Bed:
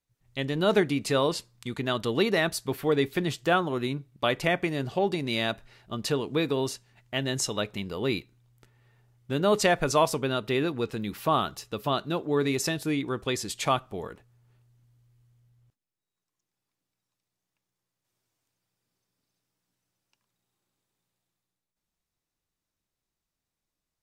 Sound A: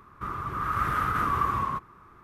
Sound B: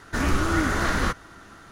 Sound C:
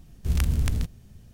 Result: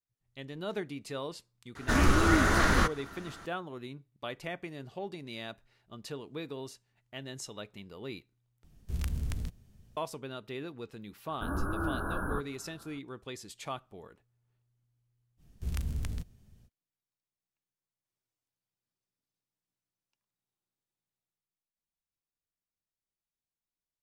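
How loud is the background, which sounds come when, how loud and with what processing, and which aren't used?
bed -13.5 dB
1.75 s: add B -1 dB
8.64 s: replace with C -10 dB
11.28 s: add B -10 dB + brick-wall FIR band-stop 1.7–9.4 kHz
15.37 s: add C -10.5 dB, fades 0.05 s
not used: A

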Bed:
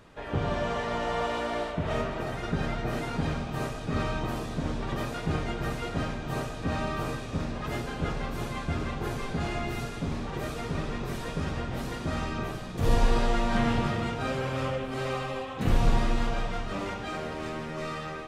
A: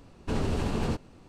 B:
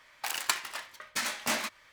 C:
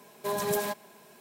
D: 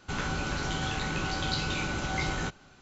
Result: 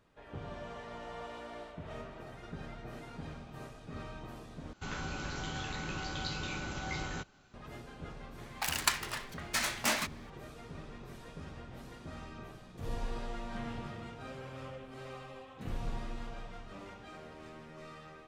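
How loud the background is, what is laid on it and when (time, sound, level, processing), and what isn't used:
bed -15 dB
4.73 s: replace with D -7.5 dB
8.38 s: add B -0.5 dB
not used: A, C

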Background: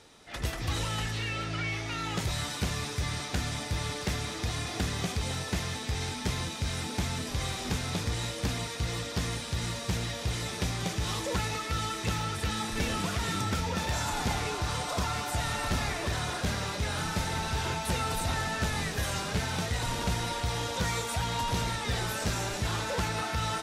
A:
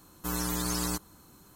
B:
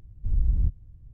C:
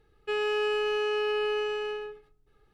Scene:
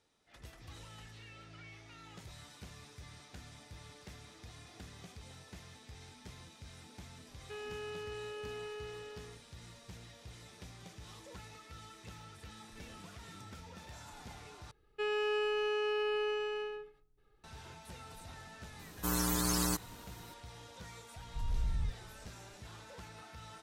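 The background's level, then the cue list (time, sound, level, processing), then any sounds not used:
background -20 dB
7.22 s: add C -16 dB
14.71 s: replace with C -5.5 dB
18.79 s: add A -1 dB
21.16 s: add B -15 dB + every event in the spectrogram widened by 120 ms

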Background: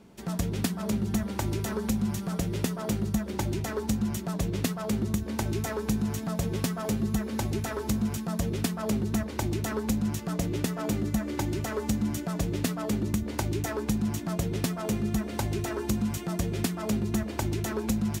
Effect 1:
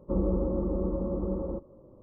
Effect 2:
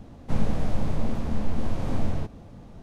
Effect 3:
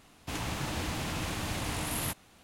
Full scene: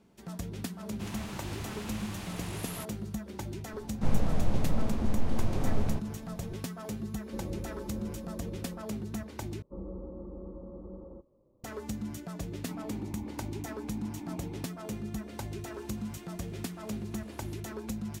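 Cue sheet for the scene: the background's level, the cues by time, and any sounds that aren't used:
background -9 dB
0.72 s: add 3 -7.5 dB
3.73 s: add 2 -2.5 dB
7.23 s: add 1 -13 dB
9.62 s: replace with 1 -14 dB
12.39 s: add 2 -1 dB + vowel filter u
15.47 s: add 3 -13 dB + compression, threshold -43 dBFS

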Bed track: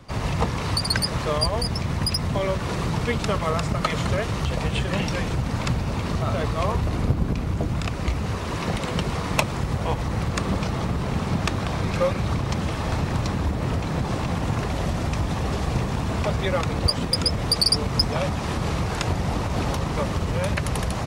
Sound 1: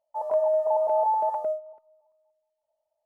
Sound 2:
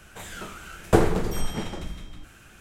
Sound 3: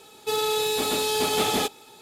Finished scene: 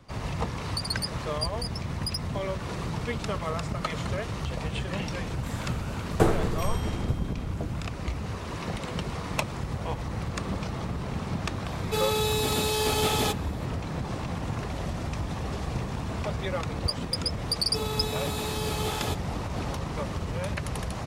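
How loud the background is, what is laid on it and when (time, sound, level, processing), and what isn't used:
bed track -7 dB
5.27 s: add 2 -4 dB
11.65 s: add 3 -2.5 dB
17.47 s: add 3 -9 dB
not used: 1

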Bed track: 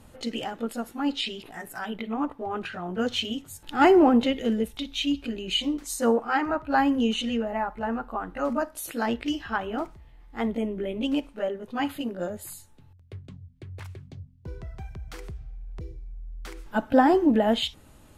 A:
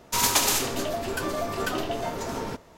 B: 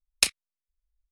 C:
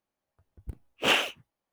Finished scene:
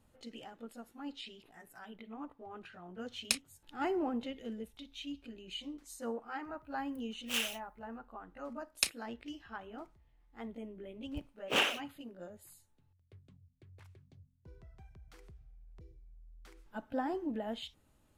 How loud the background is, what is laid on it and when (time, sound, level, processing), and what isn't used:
bed track -17 dB
3.08 s: add B -10 dB
6.26 s: add C -2.5 dB + differentiator
8.60 s: add B -9 dB
10.48 s: add C -6 dB
not used: A

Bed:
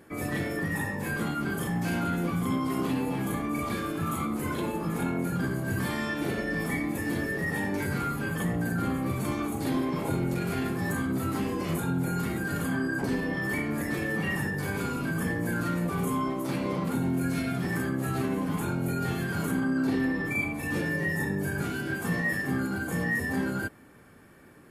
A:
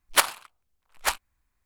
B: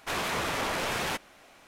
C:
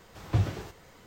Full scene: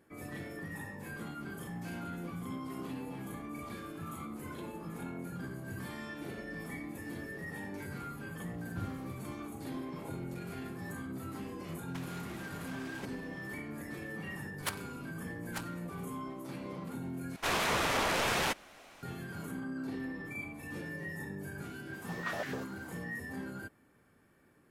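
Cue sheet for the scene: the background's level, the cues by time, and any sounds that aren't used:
bed -12.5 dB
8.43 s: add C -16 dB
11.88 s: add B -13 dB + compressor with a negative ratio -35 dBFS, ratio -0.5
14.49 s: add A -17.5 dB
17.36 s: replace with B
21.93 s: add C -3 dB + step-sequenced high-pass 10 Hz 300–1700 Hz

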